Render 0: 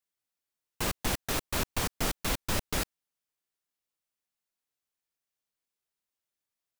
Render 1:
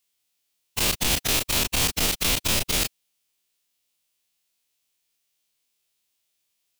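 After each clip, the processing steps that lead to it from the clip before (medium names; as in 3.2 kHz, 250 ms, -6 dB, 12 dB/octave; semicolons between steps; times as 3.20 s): every event in the spectrogram widened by 60 ms; resonant high shelf 2.1 kHz +6.5 dB, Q 1.5; peak limiter -16 dBFS, peak gain reduction 7 dB; trim +4 dB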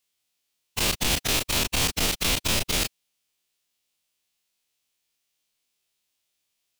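treble shelf 9.2 kHz -5 dB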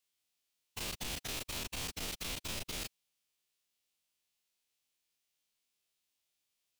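peak limiter -23.5 dBFS, peak gain reduction 11 dB; trim -6.5 dB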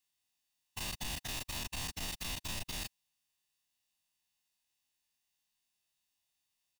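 comb 1.1 ms, depth 51%; trim -1 dB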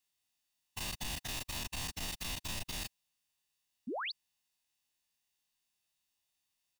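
painted sound rise, 3.87–4.12 s, 200–5000 Hz -38 dBFS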